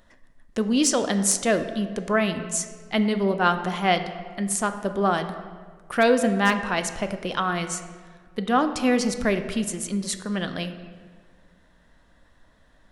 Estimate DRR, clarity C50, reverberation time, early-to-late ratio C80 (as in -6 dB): 8.0 dB, 10.5 dB, 1.7 s, 11.5 dB